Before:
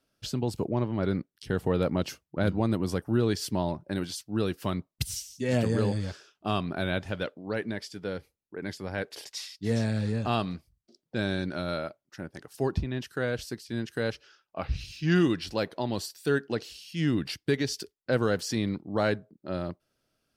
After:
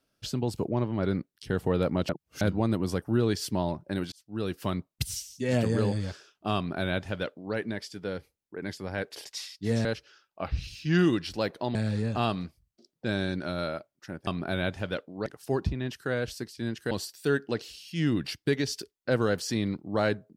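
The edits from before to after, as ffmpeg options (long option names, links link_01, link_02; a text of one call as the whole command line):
ffmpeg -i in.wav -filter_complex "[0:a]asplit=9[link_01][link_02][link_03][link_04][link_05][link_06][link_07][link_08][link_09];[link_01]atrim=end=2.092[link_10];[link_02]atrim=start=2.088:end=2.412,asetpts=PTS-STARTPTS,areverse[link_11];[link_03]atrim=start=2.408:end=4.12,asetpts=PTS-STARTPTS,afade=type=out:start_time=1.708:duration=0.004:curve=hsin[link_12];[link_04]atrim=start=4.12:end=9.852,asetpts=PTS-STARTPTS,afade=type=in:duration=0.46[link_13];[link_05]atrim=start=14.018:end=15.922[link_14];[link_06]atrim=start=9.848:end=12.372[link_15];[link_07]atrim=start=6.558:end=7.552[link_16];[link_08]atrim=start=12.368:end=14.022[link_17];[link_09]atrim=start=15.918[link_18];[link_10][link_11]acrossfade=duration=0.004:curve1=hsin:curve2=hsin[link_19];[link_12][link_13]concat=n=2:v=0:a=1[link_20];[link_19][link_20]acrossfade=duration=0.004:curve1=hsin:curve2=hsin[link_21];[link_21][link_14]acrossfade=duration=0.004:curve1=hsin:curve2=hsin[link_22];[link_22][link_15]acrossfade=duration=0.004:curve1=hsin:curve2=hsin[link_23];[link_23][link_16]acrossfade=duration=0.004:curve1=hsin:curve2=hsin[link_24];[link_24][link_17]acrossfade=duration=0.004:curve1=hsin:curve2=hsin[link_25];[link_25][link_18]acrossfade=duration=0.004:curve1=hsin:curve2=hsin" out.wav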